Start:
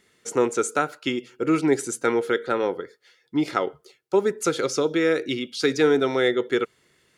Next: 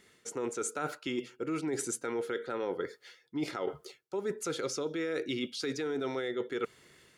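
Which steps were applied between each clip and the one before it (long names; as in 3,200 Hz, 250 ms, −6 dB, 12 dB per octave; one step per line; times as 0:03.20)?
automatic gain control gain up to 3.5 dB
brickwall limiter −13 dBFS, peak gain reduction 8.5 dB
reversed playback
downward compressor 6 to 1, threshold −32 dBFS, peak gain reduction 14 dB
reversed playback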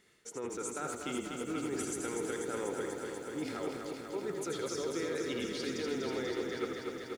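echo with shifted repeats 81 ms, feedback 36%, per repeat −37 Hz, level −6 dB
feedback echo at a low word length 244 ms, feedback 80%, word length 10 bits, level −5 dB
level −5 dB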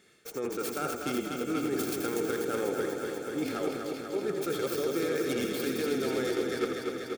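stylus tracing distortion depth 0.42 ms
notch comb filter 980 Hz
level +6 dB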